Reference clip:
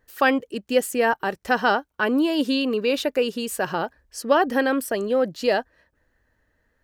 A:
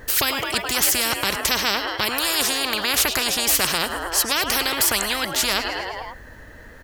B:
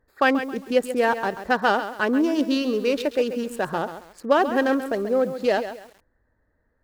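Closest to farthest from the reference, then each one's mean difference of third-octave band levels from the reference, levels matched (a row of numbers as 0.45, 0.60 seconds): B, A; 5.0, 16.0 decibels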